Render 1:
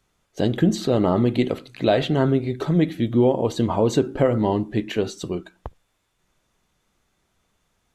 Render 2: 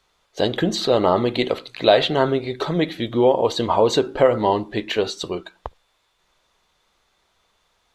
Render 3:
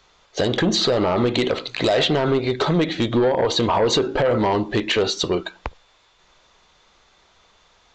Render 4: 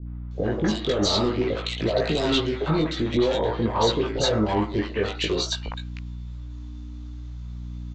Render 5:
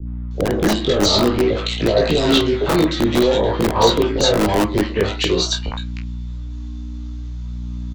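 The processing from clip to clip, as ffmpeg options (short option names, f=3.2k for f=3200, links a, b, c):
-af "equalizer=f=125:t=o:w=1:g=-5,equalizer=f=250:t=o:w=1:g=-4,equalizer=f=500:t=o:w=1:g=5,equalizer=f=1k:t=o:w=1:g=7,equalizer=f=2k:t=o:w=1:g=3,equalizer=f=4k:t=o:w=1:g=10,volume=-1dB"
-af "alimiter=limit=-11.5dB:level=0:latency=1:release=49,acompressor=threshold=-28dB:ratio=1.5,aresample=16000,aeval=exprs='0.224*sin(PI/2*1.78*val(0)/0.224)':c=same,aresample=44100"
-filter_complex "[0:a]aeval=exprs='val(0)+0.0251*(sin(2*PI*60*n/s)+sin(2*PI*2*60*n/s)/2+sin(2*PI*3*60*n/s)/3+sin(2*PI*4*60*n/s)/4+sin(2*PI*5*60*n/s)/5)':c=same,flanger=delay=17.5:depth=2.4:speed=0.51,acrossover=split=650|2000[a][b][c];[b]adelay=60[d];[c]adelay=310[e];[a][d][e]amix=inputs=3:normalize=0"
-filter_complex "[0:a]asplit=2[a][b];[b]adelay=29,volume=-9dB[c];[a][c]amix=inputs=2:normalize=0,acrossover=split=240|580|3100[d][e][f][g];[d]aeval=exprs='(mod(13.3*val(0)+1,2)-1)/13.3':c=same[h];[f]flanger=delay=17.5:depth=6.2:speed=0.51[i];[h][e][i][g]amix=inputs=4:normalize=0,volume=7.5dB"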